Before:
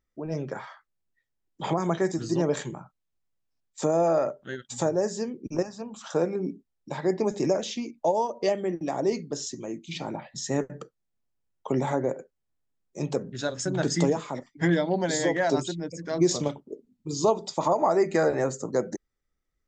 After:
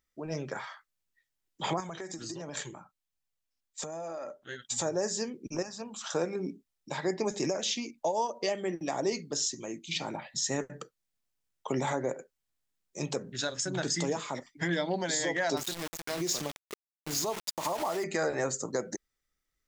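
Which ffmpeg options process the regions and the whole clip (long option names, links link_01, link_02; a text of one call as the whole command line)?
ffmpeg -i in.wav -filter_complex "[0:a]asettb=1/sr,asplit=3[link_01][link_02][link_03];[link_01]atrim=end=1.804[link_04];[link_02]atrim=start=1.8:end=4.62,asetpts=PTS-STARTPTS,afade=type=in:duration=0.004:curve=qsin,afade=type=out:start_time=2.816:duration=0.004:curve=qsin,flanger=delay=1.1:depth=2.7:regen=-47:speed=1.4:shape=sinusoidal,acompressor=threshold=-32dB:ratio=10:attack=3.2:release=140:knee=1:detection=peak[link_05];[link_03]atrim=start=4.616[link_06];[link_04][link_05]acrossfade=duration=0.004:curve1=hsin:curve2=qsin[link_07];[link_07][link_06]acrossfade=duration=0.004:curve1=qsin:curve2=hsin,asettb=1/sr,asplit=3[link_08][link_09][link_10];[link_08]atrim=end=15.574[link_11];[link_09]atrim=start=15.57:end=18.04,asetpts=PTS-STARTPTS,afade=type=in:duration=0.004:curve=qsin,afade=type=out:start_time=2.466:duration=0.004:curve=qsin,aeval=exprs='val(0)*gte(abs(val(0)),0.0237)':channel_layout=same,acompressor=threshold=-27dB:ratio=3:attack=3.2:release=140:knee=1:detection=peak[link_12];[link_10]atrim=start=18.036[link_13];[link_11][link_12]acrossfade=duration=0.004:curve1=hsin:curve2=qsin[link_14];[link_14][link_13]acrossfade=duration=0.004:curve1=qsin:curve2=hsin,tiltshelf=frequency=1200:gain=-5.5,alimiter=limit=-19.5dB:level=0:latency=1:release=165" out.wav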